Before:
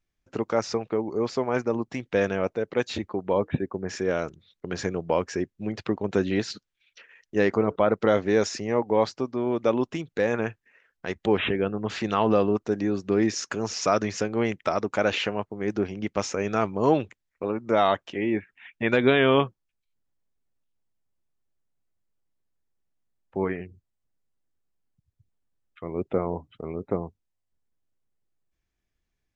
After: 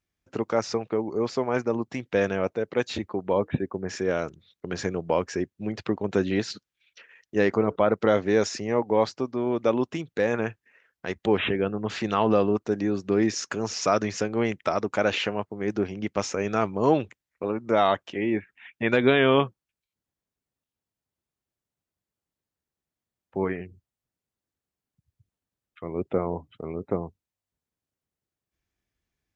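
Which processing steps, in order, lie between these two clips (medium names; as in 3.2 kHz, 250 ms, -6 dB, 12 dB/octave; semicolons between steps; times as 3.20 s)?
high-pass 51 Hz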